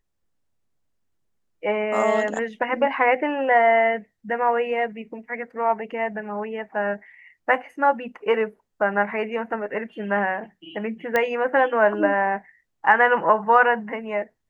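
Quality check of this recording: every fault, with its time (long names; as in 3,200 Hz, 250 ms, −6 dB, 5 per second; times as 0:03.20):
0:11.16: click −9 dBFS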